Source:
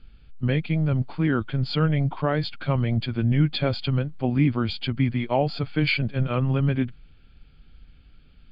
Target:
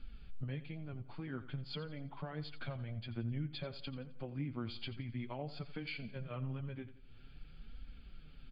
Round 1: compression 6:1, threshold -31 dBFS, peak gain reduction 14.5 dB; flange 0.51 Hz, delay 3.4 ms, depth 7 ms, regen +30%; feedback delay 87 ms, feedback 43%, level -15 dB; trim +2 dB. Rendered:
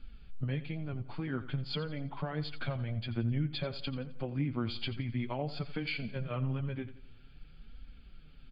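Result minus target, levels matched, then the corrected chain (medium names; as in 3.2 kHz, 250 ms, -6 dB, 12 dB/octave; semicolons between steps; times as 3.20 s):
compression: peak gain reduction -7 dB
compression 6:1, threshold -39.5 dBFS, peak gain reduction 22 dB; flange 0.51 Hz, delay 3.4 ms, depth 7 ms, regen +30%; feedback delay 87 ms, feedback 43%, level -15 dB; trim +2 dB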